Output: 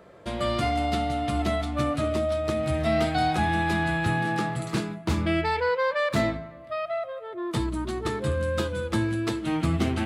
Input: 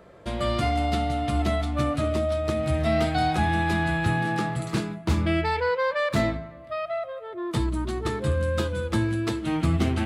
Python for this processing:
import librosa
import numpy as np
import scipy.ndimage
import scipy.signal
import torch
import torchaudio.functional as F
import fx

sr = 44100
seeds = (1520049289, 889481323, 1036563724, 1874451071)

y = fx.low_shelf(x, sr, hz=71.0, db=-8.5)